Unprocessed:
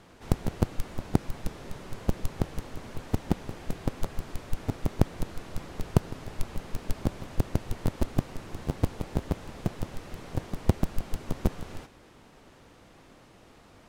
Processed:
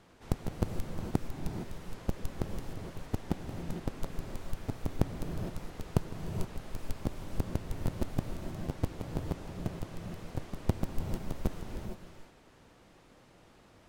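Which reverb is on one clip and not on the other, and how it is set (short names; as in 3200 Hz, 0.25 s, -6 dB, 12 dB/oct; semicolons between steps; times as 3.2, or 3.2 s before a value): non-linear reverb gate 0.49 s rising, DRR 5 dB; gain -6 dB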